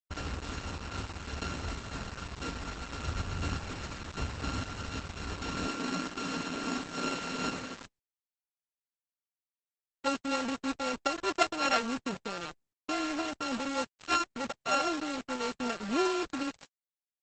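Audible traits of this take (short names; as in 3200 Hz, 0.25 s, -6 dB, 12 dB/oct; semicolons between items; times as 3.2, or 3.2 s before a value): a buzz of ramps at a fixed pitch in blocks of 32 samples; tremolo saw up 2.8 Hz, depth 35%; a quantiser's noise floor 6-bit, dither none; Opus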